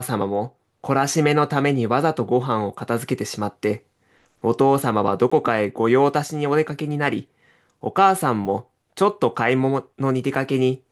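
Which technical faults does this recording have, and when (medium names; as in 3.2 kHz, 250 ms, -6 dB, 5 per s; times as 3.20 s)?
5.30–5.32 s: dropout 15 ms
8.45 s: dropout 4.6 ms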